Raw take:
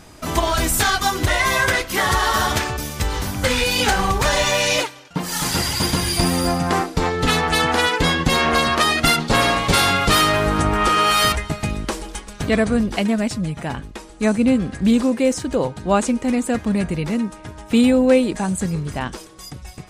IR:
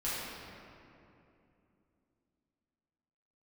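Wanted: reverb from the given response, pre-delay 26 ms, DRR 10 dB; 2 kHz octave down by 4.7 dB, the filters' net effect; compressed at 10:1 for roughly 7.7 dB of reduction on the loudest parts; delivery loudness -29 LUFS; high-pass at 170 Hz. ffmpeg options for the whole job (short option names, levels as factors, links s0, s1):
-filter_complex "[0:a]highpass=170,equalizer=f=2000:t=o:g=-6,acompressor=threshold=0.112:ratio=10,asplit=2[s0][s1];[1:a]atrim=start_sample=2205,adelay=26[s2];[s1][s2]afir=irnorm=-1:irlink=0,volume=0.158[s3];[s0][s3]amix=inputs=2:normalize=0,volume=0.531"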